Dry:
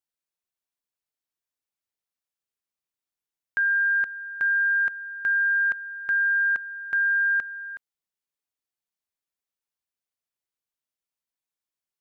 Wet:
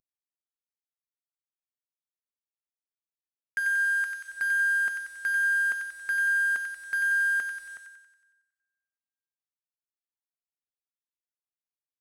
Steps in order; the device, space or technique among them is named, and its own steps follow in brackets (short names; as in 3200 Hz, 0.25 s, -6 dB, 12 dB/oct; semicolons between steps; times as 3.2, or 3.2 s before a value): early wireless headset (HPF 260 Hz 6 dB/oct; CVSD 64 kbps); 3.59–4.27 HPF 560 Hz -> 1200 Hz 24 dB/oct; thin delay 92 ms, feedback 54%, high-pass 1600 Hz, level -3 dB; two-slope reverb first 0.21 s, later 1.6 s, from -18 dB, DRR 12 dB; gain -3 dB